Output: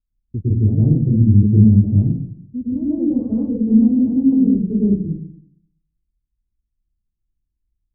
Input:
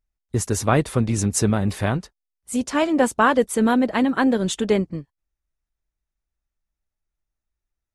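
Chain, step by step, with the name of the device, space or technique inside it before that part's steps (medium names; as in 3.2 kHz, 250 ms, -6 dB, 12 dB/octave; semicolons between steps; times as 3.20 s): next room (low-pass 280 Hz 24 dB/octave; reverberation RT60 0.60 s, pre-delay 103 ms, DRR -7.5 dB); trim -1.5 dB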